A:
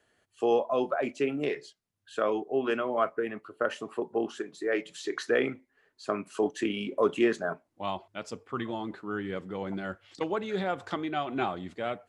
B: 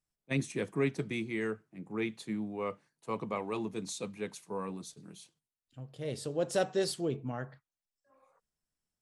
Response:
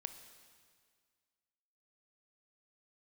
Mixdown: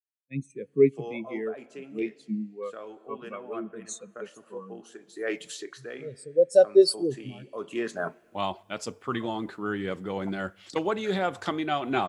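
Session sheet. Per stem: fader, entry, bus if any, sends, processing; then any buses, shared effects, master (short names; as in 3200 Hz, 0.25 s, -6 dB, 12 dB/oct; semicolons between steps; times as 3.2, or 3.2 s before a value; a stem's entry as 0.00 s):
+2.5 dB, 0.55 s, send -18.5 dB, auto duck -23 dB, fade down 0.30 s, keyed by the second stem
+1.0 dB, 0.00 s, send -18.5 dB, AGC gain up to 5 dB; high shelf 2600 Hz +12 dB; spectral expander 2.5:1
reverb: on, RT60 1.9 s, pre-delay 20 ms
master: high shelf 6400 Hz +9.5 dB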